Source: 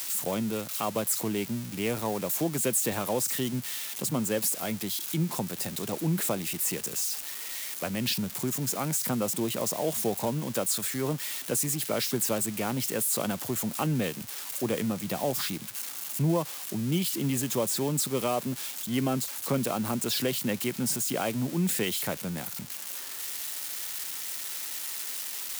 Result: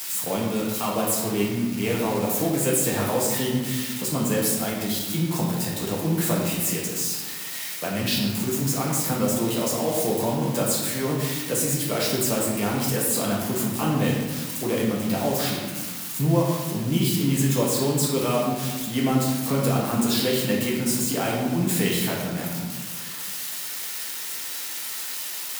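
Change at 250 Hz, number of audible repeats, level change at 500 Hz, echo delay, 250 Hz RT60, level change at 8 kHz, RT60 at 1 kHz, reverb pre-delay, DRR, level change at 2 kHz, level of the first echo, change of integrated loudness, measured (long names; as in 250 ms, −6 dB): +6.5 dB, no echo audible, +6.0 dB, no echo audible, 1.9 s, +3.5 dB, 1.4 s, 4 ms, −4.5 dB, +6.0 dB, no echo audible, +5.0 dB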